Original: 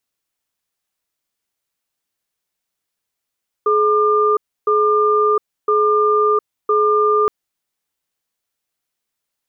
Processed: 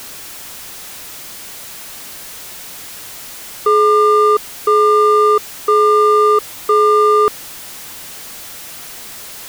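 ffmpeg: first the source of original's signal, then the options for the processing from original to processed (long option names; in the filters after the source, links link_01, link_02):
-f lavfi -i "aevalsrc='0.188*(sin(2*PI*424*t)+sin(2*PI*1200*t))*clip(min(mod(t,1.01),0.71-mod(t,1.01))/0.005,0,1)':duration=3.62:sample_rate=44100"
-filter_complex "[0:a]aeval=exprs='val(0)+0.5*0.0531*sgn(val(0))':channel_layout=same,asplit=2[link_01][link_02];[link_02]acrusher=bits=3:mix=0:aa=0.5,volume=-8dB[link_03];[link_01][link_03]amix=inputs=2:normalize=0"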